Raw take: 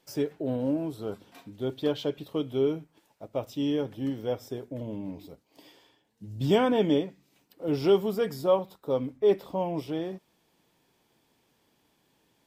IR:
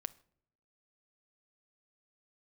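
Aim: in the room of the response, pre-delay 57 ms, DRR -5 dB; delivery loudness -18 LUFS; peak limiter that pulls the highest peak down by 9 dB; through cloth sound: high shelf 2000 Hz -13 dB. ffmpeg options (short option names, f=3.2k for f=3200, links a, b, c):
-filter_complex "[0:a]alimiter=limit=-19.5dB:level=0:latency=1,asplit=2[a][b];[1:a]atrim=start_sample=2205,adelay=57[c];[b][c]afir=irnorm=-1:irlink=0,volume=7.5dB[d];[a][d]amix=inputs=2:normalize=0,highshelf=f=2k:g=-13,volume=8.5dB"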